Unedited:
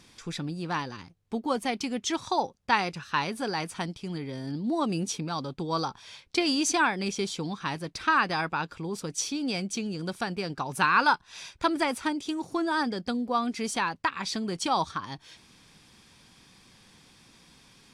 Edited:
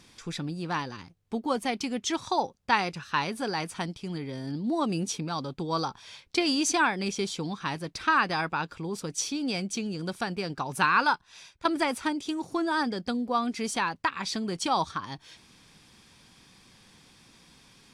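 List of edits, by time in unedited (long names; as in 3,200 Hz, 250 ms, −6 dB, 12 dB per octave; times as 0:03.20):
0:10.88–0:11.65: fade out linear, to −12 dB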